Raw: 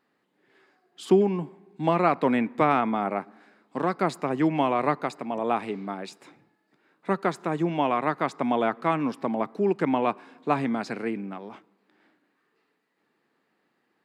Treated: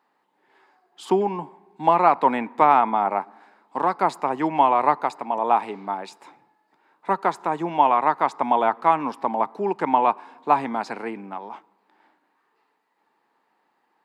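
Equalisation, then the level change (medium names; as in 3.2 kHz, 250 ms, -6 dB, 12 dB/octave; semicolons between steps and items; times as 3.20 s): high-pass 300 Hz 6 dB/octave; peaking EQ 900 Hz +13.5 dB 0.59 oct; 0.0 dB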